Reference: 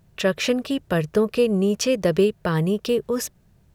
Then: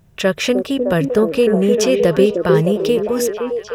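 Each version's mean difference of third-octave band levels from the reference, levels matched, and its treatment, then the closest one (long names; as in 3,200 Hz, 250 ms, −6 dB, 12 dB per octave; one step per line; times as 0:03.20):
3.5 dB: notch filter 4,400 Hz, Q 11
on a send: echo through a band-pass that steps 306 ms, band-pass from 360 Hz, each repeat 0.7 octaves, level −1 dB
on the sum: level +4.5 dB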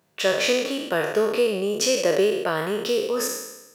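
9.0 dB: peak hold with a decay on every bin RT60 1.00 s
high-pass filter 340 Hz 12 dB per octave
level −1 dB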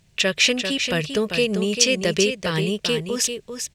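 6.5 dB: flat-topped bell 4,200 Hz +12.5 dB 2.5 octaves
on a send: single-tap delay 394 ms −7.5 dB
on the sum: level −3 dB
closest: first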